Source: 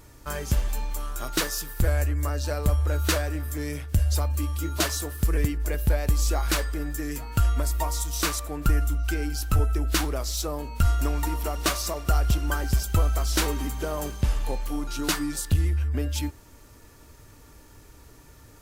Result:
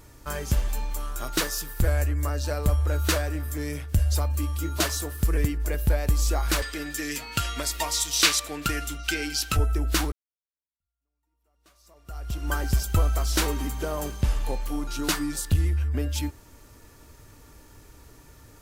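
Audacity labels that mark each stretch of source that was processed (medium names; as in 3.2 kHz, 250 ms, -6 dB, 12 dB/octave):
6.620000	9.570000	frequency weighting D
10.120000	12.530000	fade in exponential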